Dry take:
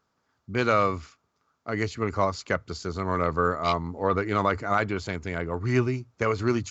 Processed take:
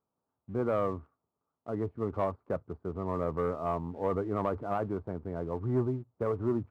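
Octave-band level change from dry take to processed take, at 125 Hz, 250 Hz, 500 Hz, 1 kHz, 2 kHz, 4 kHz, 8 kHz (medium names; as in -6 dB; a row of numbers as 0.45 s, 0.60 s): -6.0 dB, -4.5 dB, -4.5 dB, -9.5 dB, -19.0 dB, under -20 dB, no reading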